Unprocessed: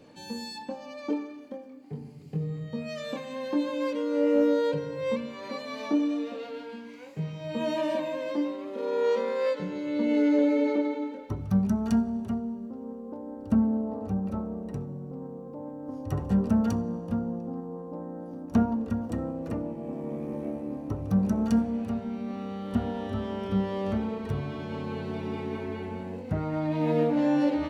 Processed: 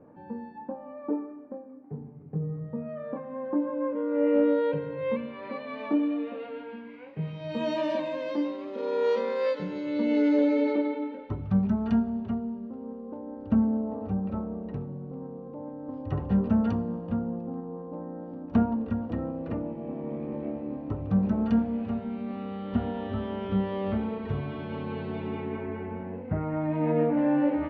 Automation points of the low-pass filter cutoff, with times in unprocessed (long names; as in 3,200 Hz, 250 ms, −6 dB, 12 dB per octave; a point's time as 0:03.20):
low-pass filter 24 dB per octave
0:03.90 1,400 Hz
0:04.36 2,800 Hz
0:07.12 2,800 Hz
0:07.56 5,500 Hz
0:10.54 5,500 Hz
0:10.99 3,500 Hz
0:25.20 3,500 Hz
0:25.74 2,300 Hz